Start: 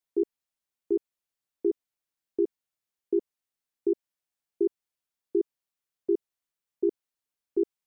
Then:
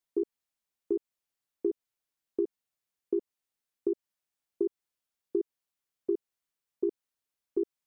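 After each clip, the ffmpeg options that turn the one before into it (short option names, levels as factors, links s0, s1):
-af "acompressor=threshold=0.0562:ratio=6"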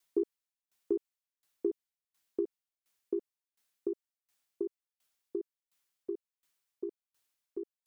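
-af "tiltshelf=f=970:g=-3.5,aeval=exprs='val(0)*pow(10,-26*if(lt(mod(1.4*n/s,1),2*abs(1.4)/1000),1-mod(1.4*n/s,1)/(2*abs(1.4)/1000),(mod(1.4*n/s,1)-2*abs(1.4)/1000)/(1-2*abs(1.4)/1000))/20)':c=same,volume=2.82"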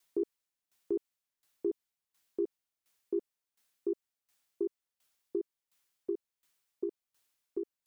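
-af "alimiter=level_in=1.41:limit=0.0631:level=0:latency=1:release=12,volume=0.708,volume=1.41"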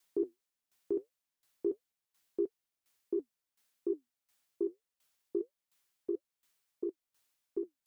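-af "flanger=delay=3.1:depth=7.5:regen=-64:speed=1.6:shape=triangular,volume=1.58"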